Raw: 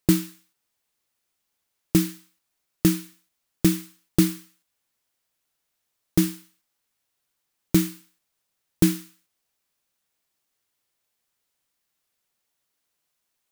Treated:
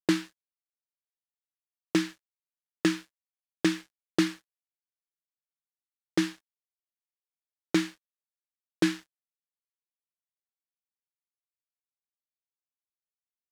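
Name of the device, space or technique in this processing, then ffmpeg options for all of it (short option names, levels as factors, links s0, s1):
pocket radio on a weak battery: -af "highpass=400,lowpass=4200,aeval=exprs='sgn(val(0))*max(abs(val(0))-0.00282,0)':c=same,equalizer=f=1700:t=o:w=0.25:g=6,volume=1.26"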